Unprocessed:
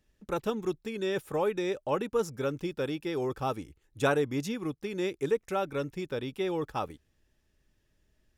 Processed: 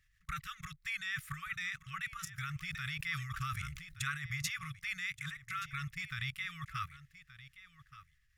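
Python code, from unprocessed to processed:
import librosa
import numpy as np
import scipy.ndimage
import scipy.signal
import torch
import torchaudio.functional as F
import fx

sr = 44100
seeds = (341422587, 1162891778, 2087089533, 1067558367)

y = fx.peak_eq(x, sr, hz=2000.0, db=11.5, octaves=0.39)
y = fx.level_steps(y, sr, step_db=20)
y = fx.brickwall_bandstop(y, sr, low_hz=160.0, high_hz=1100.0)
y = y + 10.0 ** (-16.0 / 20.0) * np.pad(y, (int(1175 * sr / 1000.0), 0))[:len(y)]
y = fx.sustainer(y, sr, db_per_s=46.0, at=(2.6, 4.07))
y = y * 10.0 ** (8.0 / 20.0)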